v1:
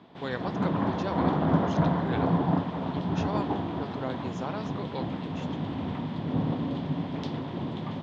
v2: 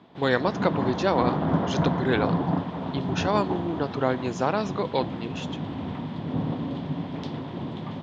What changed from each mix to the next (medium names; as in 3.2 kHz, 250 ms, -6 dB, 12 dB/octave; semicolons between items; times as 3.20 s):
speech +11.0 dB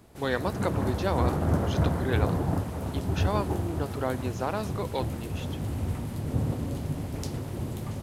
speech -5.5 dB; background: remove cabinet simulation 160–4100 Hz, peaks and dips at 170 Hz +9 dB, 270 Hz +6 dB, 710 Hz +4 dB, 1 kHz +8 dB, 1.8 kHz +3 dB, 3.4 kHz +9 dB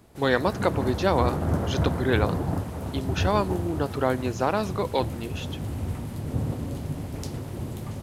speech +6.0 dB